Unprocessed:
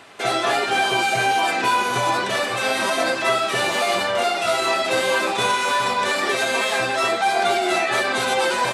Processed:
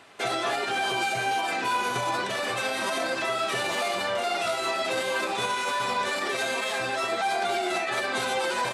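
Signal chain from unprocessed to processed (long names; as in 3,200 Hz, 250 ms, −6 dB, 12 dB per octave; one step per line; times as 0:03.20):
brickwall limiter −17 dBFS, peak gain reduction 8.5 dB
expander for the loud parts 1.5 to 1, over −34 dBFS
level −1 dB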